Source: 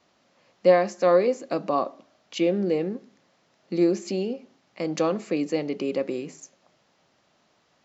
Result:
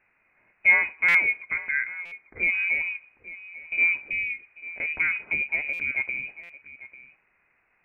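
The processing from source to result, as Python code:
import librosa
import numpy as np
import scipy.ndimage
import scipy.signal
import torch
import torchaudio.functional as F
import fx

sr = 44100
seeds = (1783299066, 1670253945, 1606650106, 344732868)

y = fx.highpass(x, sr, hz=430.0, slope=12, at=(1.43, 2.43))
y = y + 10.0 ** (-17.0 / 20.0) * np.pad(y, (int(845 * sr / 1000.0), 0))[:len(y)]
y = fx.freq_invert(y, sr, carrier_hz=2700)
y = fx.buffer_glitch(y, sr, at_s=(1.08, 2.05, 5.73, 6.43), block=256, repeats=10)
y = y * 10.0 ** (-1.5 / 20.0)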